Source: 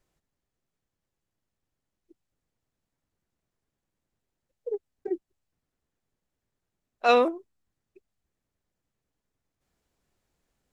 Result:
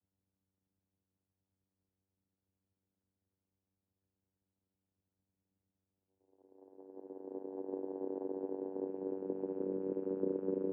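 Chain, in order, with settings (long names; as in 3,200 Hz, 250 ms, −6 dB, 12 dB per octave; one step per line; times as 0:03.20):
low-pass filter 1,000 Hz 6 dB per octave
harmonic generator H 3 −12 dB, 5 −44 dB, 6 −44 dB, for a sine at −9 dBFS
extreme stretch with random phases 4.5×, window 1.00 s, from 0:02.82
channel vocoder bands 8, saw 95.4 Hz
level +9.5 dB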